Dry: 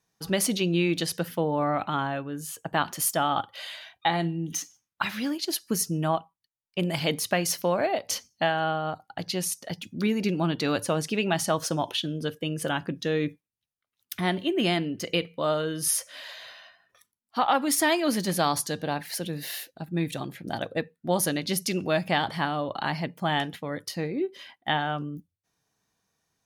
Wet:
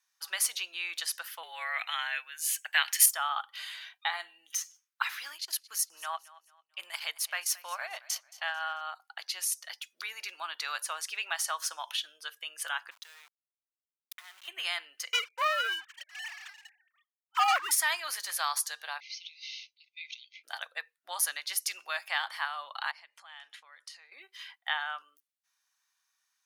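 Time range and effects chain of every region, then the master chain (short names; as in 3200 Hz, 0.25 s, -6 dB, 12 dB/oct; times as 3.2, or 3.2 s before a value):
1.43–3.06 HPF 410 Hz + resonant high shelf 1600 Hz +8 dB, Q 3 + frequency shift -46 Hz
5.36–8.81 transient shaper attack -4 dB, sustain -12 dB + feedback echo 0.222 s, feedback 35%, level -20 dB
12.91–14.48 compressor 16:1, threshold -40 dBFS + sample gate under -46 dBFS
15.13–17.71 sine-wave speech + sample leveller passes 3
19–20.44 brick-wall FIR band-pass 2000–6600 Hz + air absorption 74 m
22.91–24.12 LPF 9700 Hz 24 dB/oct + compressor, threshold -42 dBFS
whole clip: HPF 1100 Hz 24 dB/oct; dynamic EQ 3300 Hz, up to -4 dB, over -40 dBFS, Q 0.85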